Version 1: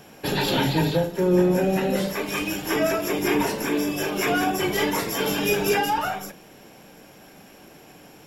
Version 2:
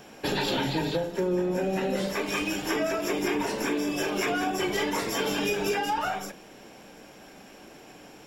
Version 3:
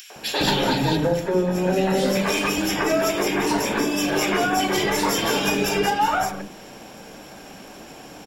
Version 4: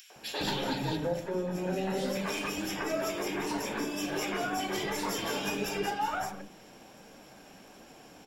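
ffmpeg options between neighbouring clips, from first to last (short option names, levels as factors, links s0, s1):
-af "equalizer=f=100:t=o:w=0.33:g=-9,equalizer=f=160:t=o:w=0.33:g=-6,equalizer=f=12500:t=o:w=0.33:g=-12,acompressor=threshold=0.0631:ratio=6"
-filter_complex "[0:a]acrossover=split=380|2100[s0][s1][s2];[s1]adelay=100[s3];[s0]adelay=160[s4];[s4][s3][s2]amix=inputs=3:normalize=0,acompressor=mode=upward:threshold=0.00447:ratio=2.5,volume=2.66"
-af "flanger=delay=3.6:depth=8.2:regen=75:speed=1.4:shape=sinusoidal,volume=0.447"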